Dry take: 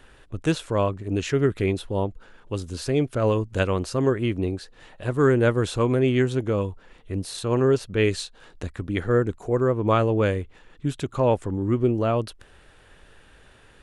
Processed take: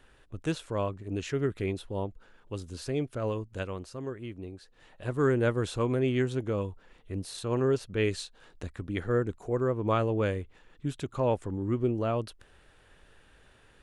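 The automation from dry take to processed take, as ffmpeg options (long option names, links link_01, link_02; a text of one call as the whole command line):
ffmpeg -i in.wav -af "volume=1dB,afade=type=out:start_time=2.9:duration=1.1:silence=0.421697,afade=type=in:start_time=4.53:duration=0.54:silence=0.354813" out.wav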